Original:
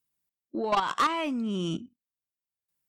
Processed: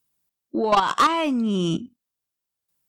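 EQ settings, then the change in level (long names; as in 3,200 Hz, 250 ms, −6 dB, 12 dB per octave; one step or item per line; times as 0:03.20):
parametric band 2,100 Hz −3.5 dB 0.77 octaves
+7.5 dB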